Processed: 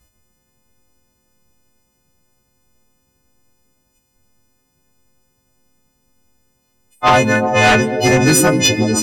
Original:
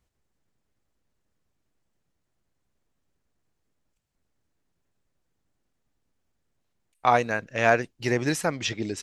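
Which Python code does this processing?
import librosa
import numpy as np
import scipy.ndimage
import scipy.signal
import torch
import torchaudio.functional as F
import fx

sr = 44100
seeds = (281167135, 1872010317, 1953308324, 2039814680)

p1 = fx.freq_snap(x, sr, grid_st=3)
p2 = fx.low_shelf(p1, sr, hz=370.0, db=9.5)
p3 = p2 + fx.echo_stepped(p2, sr, ms=123, hz=230.0, octaves=0.7, feedback_pct=70, wet_db=-3, dry=0)
p4 = fx.fold_sine(p3, sr, drive_db=8, ceiling_db=-3.0)
p5 = fx.rev_fdn(p4, sr, rt60_s=1.4, lf_ratio=1.0, hf_ratio=0.65, size_ms=19.0, drr_db=17.0)
y = F.gain(torch.from_numpy(p5), -3.0).numpy()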